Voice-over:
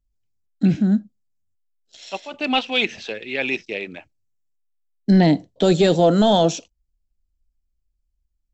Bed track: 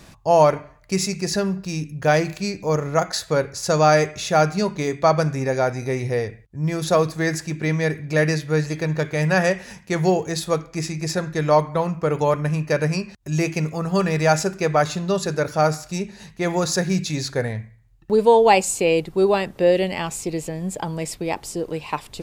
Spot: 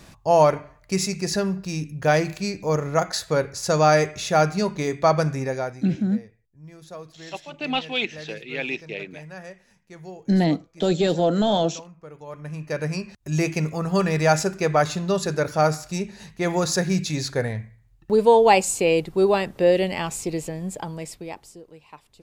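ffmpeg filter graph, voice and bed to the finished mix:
-filter_complex "[0:a]adelay=5200,volume=-5dB[a];[1:a]volume=18.5dB,afade=t=out:st=5.32:d=0.56:silence=0.105925,afade=t=in:st=12.26:d=1.09:silence=0.1,afade=t=out:st=20.33:d=1.3:silence=0.125893[b];[a][b]amix=inputs=2:normalize=0"

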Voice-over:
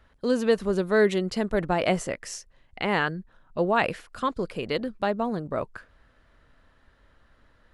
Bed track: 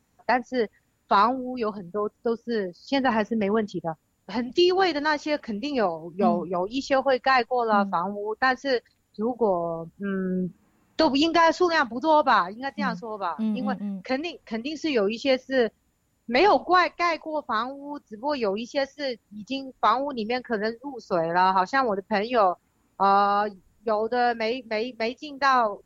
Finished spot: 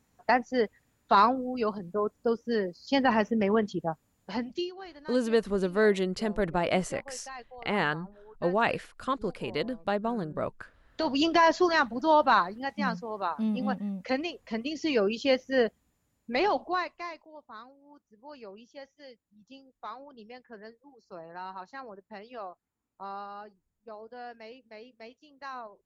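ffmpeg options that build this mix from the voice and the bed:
-filter_complex "[0:a]adelay=4850,volume=-3dB[a];[1:a]volume=18.5dB,afade=t=out:st=4.24:d=0.47:silence=0.0891251,afade=t=in:st=10.84:d=0.46:silence=0.1,afade=t=out:st=15.61:d=1.66:silence=0.133352[b];[a][b]amix=inputs=2:normalize=0"

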